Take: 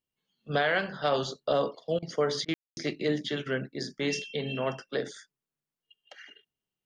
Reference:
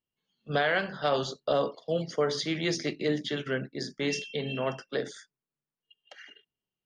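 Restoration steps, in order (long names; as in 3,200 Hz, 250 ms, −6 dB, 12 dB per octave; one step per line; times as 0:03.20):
ambience match 0:02.54–0:02.77
repair the gap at 0:01.99/0:02.45, 33 ms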